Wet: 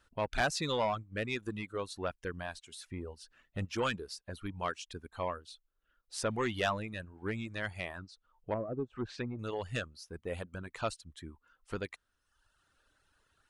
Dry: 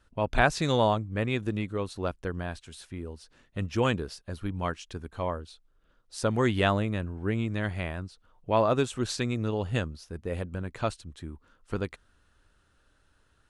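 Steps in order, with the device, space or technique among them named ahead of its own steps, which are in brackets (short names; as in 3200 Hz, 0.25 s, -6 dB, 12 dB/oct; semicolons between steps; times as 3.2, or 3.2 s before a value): 2.86–3.65 low shelf 350 Hz +5.5 dB; 7.96–9.39 treble ducked by the level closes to 390 Hz, closed at -22 dBFS; saturation between pre-emphasis and de-emphasis (high shelf 9700 Hz +8.5 dB; soft clip -20.5 dBFS, distortion -13 dB; high shelf 9700 Hz -8.5 dB); reverb removal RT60 0.98 s; low shelf 420 Hz -8 dB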